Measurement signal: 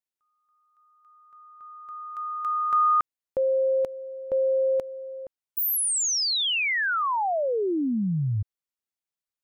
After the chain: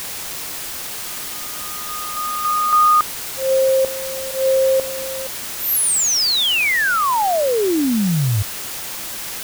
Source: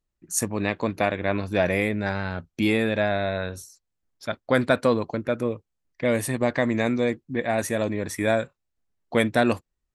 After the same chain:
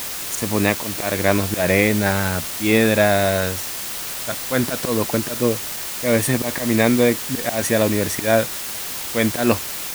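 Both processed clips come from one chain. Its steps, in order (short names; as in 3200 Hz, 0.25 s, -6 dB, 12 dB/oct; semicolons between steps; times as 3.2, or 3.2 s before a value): auto swell 0.162 s; requantised 6-bit, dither triangular; gain +7.5 dB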